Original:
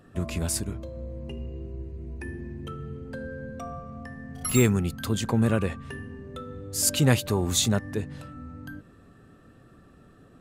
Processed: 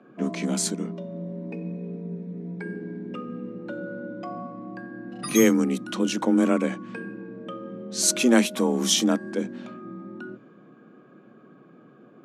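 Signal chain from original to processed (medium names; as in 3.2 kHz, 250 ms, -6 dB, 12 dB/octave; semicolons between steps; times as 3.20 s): level-controlled noise filter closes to 2.7 kHz, open at -23 dBFS; tape speed -15%; frequency shift +120 Hz; trim +2 dB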